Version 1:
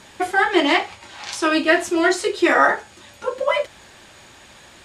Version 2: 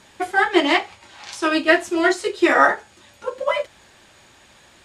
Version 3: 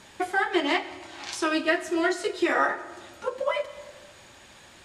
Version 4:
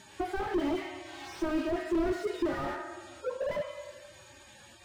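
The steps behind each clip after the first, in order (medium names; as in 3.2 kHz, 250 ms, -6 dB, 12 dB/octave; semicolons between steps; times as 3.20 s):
upward expansion 1.5:1, over -25 dBFS; trim +1.5 dB
compression 2:1, threshold -27 dBFS, peak gain reduction 10 dB; reverberation RT60 1.6 s, pre-delay 74 ms, DRR 15 dB
harmonic-percussive separation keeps harmonic; slew-rate limiter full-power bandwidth 20 Hz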